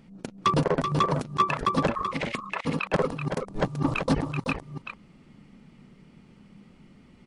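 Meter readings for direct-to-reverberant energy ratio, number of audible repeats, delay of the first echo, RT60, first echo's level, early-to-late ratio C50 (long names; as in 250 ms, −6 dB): no reverb audible, 1, 381 ms, no reverb audible, −7.0 dB, no reverb audible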